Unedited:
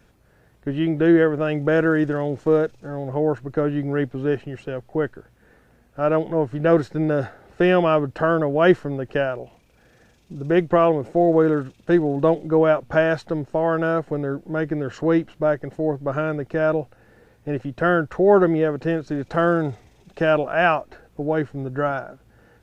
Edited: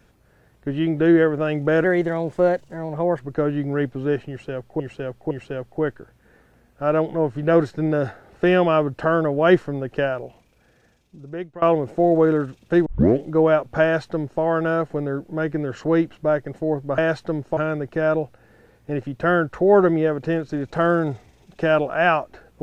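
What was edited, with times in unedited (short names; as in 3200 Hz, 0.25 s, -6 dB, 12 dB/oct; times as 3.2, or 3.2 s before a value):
1.84–3.39 speed 114%
4.48–4.99 loop, 3 plays
9.41–10.79 fade out, to -21.5 dB
12.03 tape start 0.36 s
13–13.59 copy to 16.15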